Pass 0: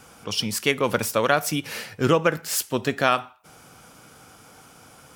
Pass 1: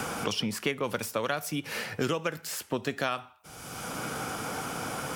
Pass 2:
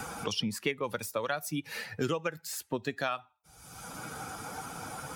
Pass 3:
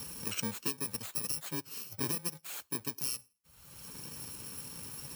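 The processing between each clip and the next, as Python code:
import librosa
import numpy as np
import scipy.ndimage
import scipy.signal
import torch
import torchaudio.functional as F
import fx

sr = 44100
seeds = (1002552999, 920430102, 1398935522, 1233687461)

y1 = fx.band_squash(x, sr, depth_pct=100)
y1 = y1 * librosa.db_to_amplitude(-8.5)
y2 = fx.bin_expand(y1, sr, power=1.5)
y3 = fx.bit_reversed(y2, sr, seeds[0], block=64)
y3 = y3 * librosa.db_to_amplitude(-3.5)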